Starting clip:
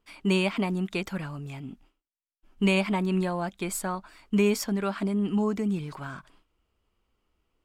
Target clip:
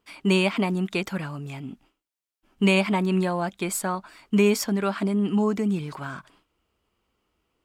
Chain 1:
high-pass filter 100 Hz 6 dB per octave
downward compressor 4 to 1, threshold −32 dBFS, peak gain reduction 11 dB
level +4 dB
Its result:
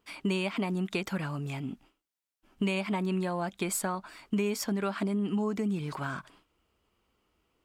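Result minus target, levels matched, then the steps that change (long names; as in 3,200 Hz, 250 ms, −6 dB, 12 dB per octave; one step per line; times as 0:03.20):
downward compressor: peak gain reduction +11 dB
remove: downward compressor 4 to 1, threshold −32 dBFS, peak gain reduction 11 dB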